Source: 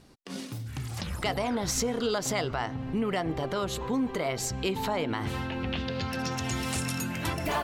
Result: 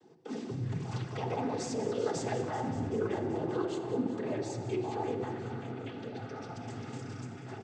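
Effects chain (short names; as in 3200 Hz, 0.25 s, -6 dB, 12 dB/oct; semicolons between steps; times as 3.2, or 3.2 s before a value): Doppler pass-by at 1.78, 23 m/s, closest 14 m; tilt shelf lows +7.5 dB, about 1300 Hz; comb 2.6 ms, depth 99%; in parallel at -2 dB: negative-ratio compressor -31 dBFS; on the sum: limiter -21 dBFS, peak gain reduction 11 dB; noise vocoder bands 16; thin delay 0.192 s, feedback 77%, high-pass 1700 Hz, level -12.5 dB; shoebox room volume 4000 m³, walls mixed, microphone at 1.4 m; gain -6 dB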